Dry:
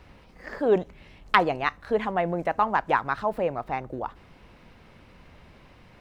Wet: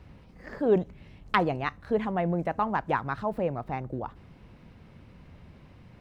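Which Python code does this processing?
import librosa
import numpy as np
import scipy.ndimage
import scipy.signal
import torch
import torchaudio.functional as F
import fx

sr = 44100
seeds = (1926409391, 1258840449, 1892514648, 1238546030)

y = fx.peak_eq(x, sr, hz=120.0, db=11.0, octaves=2.9)
y = y * 10.0 ** (-6.0 / 20.0)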